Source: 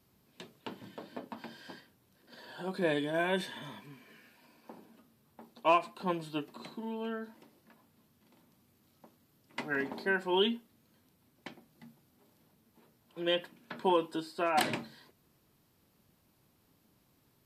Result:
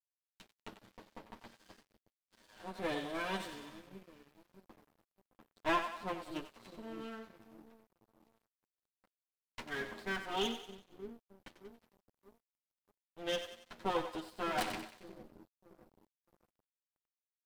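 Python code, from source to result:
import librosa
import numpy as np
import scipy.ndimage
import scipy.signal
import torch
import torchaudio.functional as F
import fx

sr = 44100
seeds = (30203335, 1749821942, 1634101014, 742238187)

y = fx.lower_of_two(x, sr, delay_ms=9.6)
y = fx.echo_split(y, sr, split_hz=450.0, low_ms=617, high_ms=93, feedback_pct=52, wet_db=-8.5)
y = np.sign(y) * np.maximum(np.abs(y) - 10.0 ** (-51.5 / 20.0), 0.0)
y = F.gain(torch.from_numpy(y), -5.0).numpy()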